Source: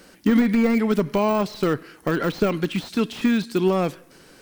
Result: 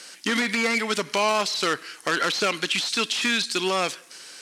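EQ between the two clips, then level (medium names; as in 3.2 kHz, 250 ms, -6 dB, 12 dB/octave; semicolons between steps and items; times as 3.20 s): frequency weighting ITU-R 468; +1.5 dB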